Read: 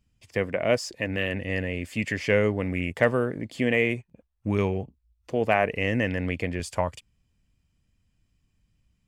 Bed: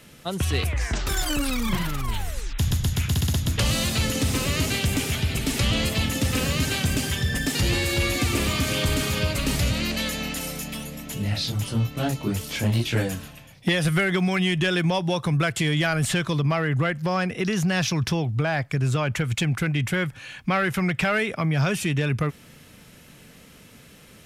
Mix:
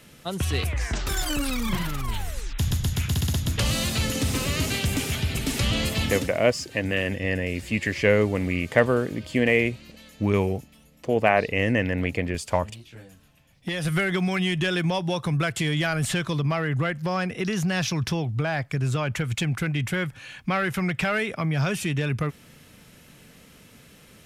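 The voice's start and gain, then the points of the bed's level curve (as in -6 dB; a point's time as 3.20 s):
5.75 s, +2.5 dB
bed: 6.17 s -1.5 dB
6.38 s -21.5 dB
13.15 s -21.5 dB
13.94 s -2 dB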